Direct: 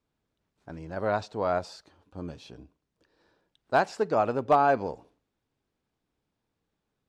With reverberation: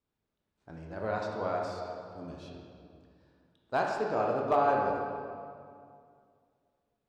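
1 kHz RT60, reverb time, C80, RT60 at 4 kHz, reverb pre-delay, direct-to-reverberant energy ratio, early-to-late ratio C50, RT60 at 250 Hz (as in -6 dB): 2.2 s, 2.3 s, 3.0 dB, 1.5 s, 15 ms, -1.0 dB, 1.5 dB, 2.6 s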